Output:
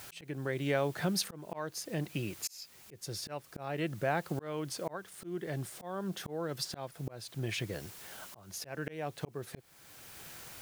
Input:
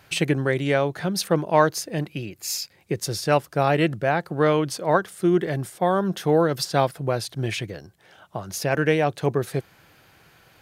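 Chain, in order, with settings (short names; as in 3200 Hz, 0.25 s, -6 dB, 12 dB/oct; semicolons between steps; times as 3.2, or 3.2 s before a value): added noise white -50 dBFS; auto swell 0.72 s; compressor 1.5:1, threshold -39 dBFS, peak gain reduction 7.5 dB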